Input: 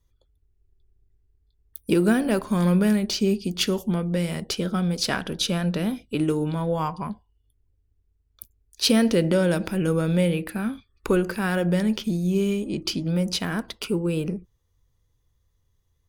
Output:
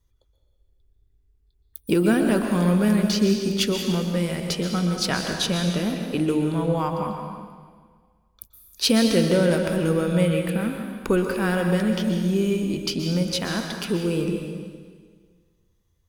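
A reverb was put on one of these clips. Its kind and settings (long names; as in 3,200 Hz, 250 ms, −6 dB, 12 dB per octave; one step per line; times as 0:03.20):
dense smooth reverb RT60 1.7 s, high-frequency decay 0.95×, pre-delay 110 ms, DRR 3.5 dB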